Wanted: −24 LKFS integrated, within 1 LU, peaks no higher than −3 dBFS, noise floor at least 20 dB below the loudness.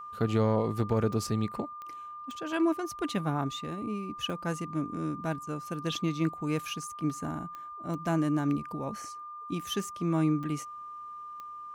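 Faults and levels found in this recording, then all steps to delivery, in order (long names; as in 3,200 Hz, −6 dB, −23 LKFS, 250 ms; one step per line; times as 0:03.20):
number of clicks 8; interfering tone 1,200 Hz; level of the tone −40 dBFS; integrated loudness −32.0 LKFS; sample peak −16.5 dBFS; target loudness −24.0 LKFS
→ click removal
notch filter 1,200 Hz, Q 30
level +8 dB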